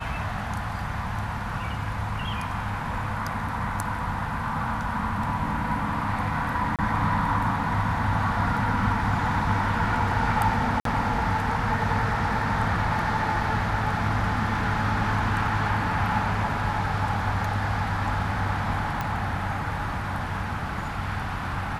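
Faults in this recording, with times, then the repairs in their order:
6.76–6.79 s: dropout 27 ms
10.80–10.85 s: dropout 53 ms
19.01 s: pop -15 dBFS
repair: de-click; interpolate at 6.76 s, 27 ms; interpolate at 10.80 s, 53 ms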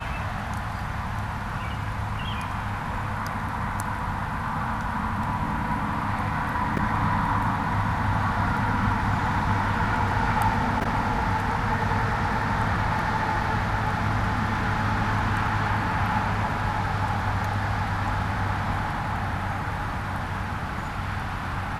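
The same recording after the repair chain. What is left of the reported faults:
nothing left

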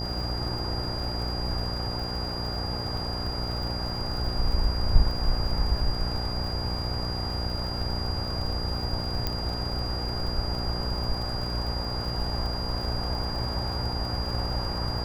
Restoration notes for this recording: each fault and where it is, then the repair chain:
buzz 60 Hz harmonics 14 -33 dBFS
crackle 58 per s -34 dBFS
whine 4.8 kHz -34 dBFS
9.27 s: pop -13 dBFS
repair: de-click; band-stop 4.8 kHz, Q 30; de-hum 60 Hz, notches 14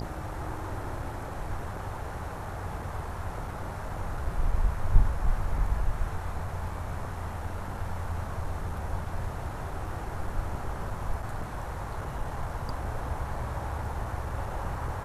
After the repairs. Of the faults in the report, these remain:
nothing left

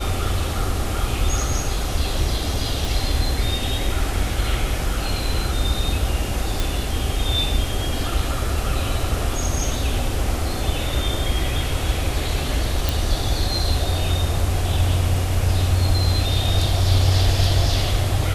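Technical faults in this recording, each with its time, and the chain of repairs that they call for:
2.85 s: pop
6.60 s: pop
12.89 s: pop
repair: de-click

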